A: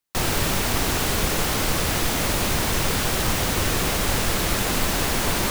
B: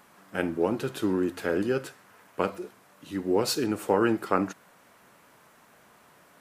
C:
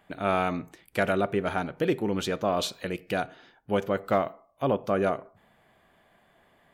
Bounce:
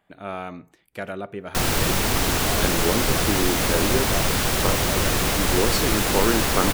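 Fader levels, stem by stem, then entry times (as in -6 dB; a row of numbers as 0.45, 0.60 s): +1.0, +1.0, -6.5 dB; 1.40, 2.25, 0.00 s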